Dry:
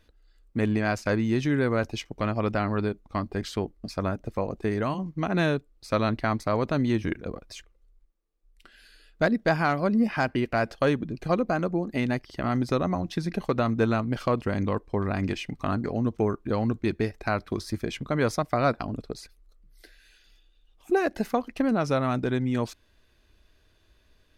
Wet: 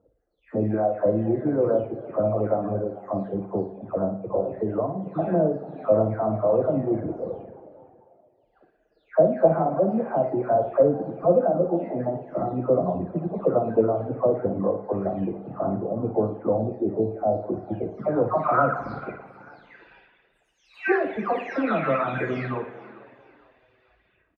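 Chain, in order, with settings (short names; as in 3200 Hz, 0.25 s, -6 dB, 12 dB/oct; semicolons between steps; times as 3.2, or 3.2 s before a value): spectral delay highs early, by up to 0.504 s; HPF 46 Hz 24 dB/oct; low shelf 120 Hz -7 dB; on a send at -4.5 dB: reverb RT60 2.0 s, pre-delay 36 ms; on the sum: reverb removal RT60 0.98 s; flutter echo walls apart 9.7 m, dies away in 0.38 s; spectral gain 16.59–17.42, 840–3500 Hz -11 dB; low-pass sweep 600 Hz -> 2200 Hz, 18.06–19.06; frequency-shifting echo 0.444 s, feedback 38%, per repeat +85 Hz, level -21 dB; gain +2 dB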